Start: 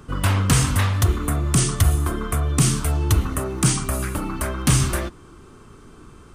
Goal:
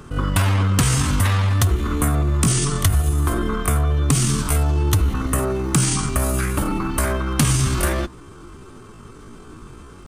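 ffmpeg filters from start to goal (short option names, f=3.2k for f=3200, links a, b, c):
-af "atempo=0.63,acompressor=threshold=-19dB:ratio=6,volume=5dB"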